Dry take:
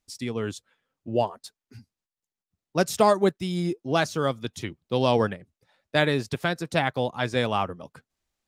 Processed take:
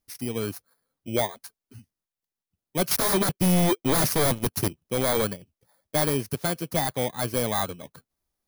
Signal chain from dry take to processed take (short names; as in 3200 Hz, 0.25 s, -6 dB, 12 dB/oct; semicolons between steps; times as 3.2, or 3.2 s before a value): FFT order left unsorted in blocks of 16 samples; 2.91–4.68 sample leveller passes 3; wavefolder -16 dBFS